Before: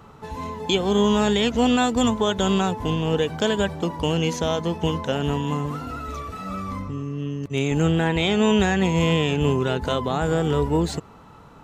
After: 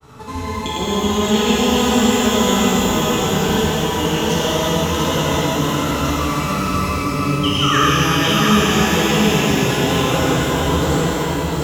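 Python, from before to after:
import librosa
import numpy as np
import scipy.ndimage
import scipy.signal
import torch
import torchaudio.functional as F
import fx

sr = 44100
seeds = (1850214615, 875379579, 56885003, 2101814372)

p1 = fx.high_shelf(x, sr, hz=3600.0, db=10.0)
p2 = fx.over_compress(p1, sr, threshold_db=-27.0, ratio=-1.0)
p3 = p1 + F.gain(torch.from_numpy(p2), 1.0).numpy()
p4 = fx.spec_paint(p3, sr, seeds[0], shape='fall', start_s=7.51, length_s=0.31, low_hz=930.0, high_hz=3300.0, level_db=-14.0)
p5 = fx.granulator(p4, sr, seeds[1], grain_ms=100.0, per_s=20.0, spray_ms=100.0, spread_st=0)
p6 = p5 + fx.echo_single(p5, sr, ms=697, db=-4.0, dry=0)
p7 = fx.rev_shimmer(p6, sr, seeds[2], rt60_s=3.6, semitones=12, shimmer_db=-8, drr_db=-7.5)
y = F.gain(torch.from_numpy(p7), -8.0).numpy()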